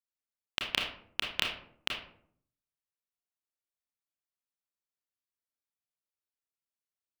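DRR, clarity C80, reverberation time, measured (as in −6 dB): 0.0 dB, 9.5 dB, 0.60 s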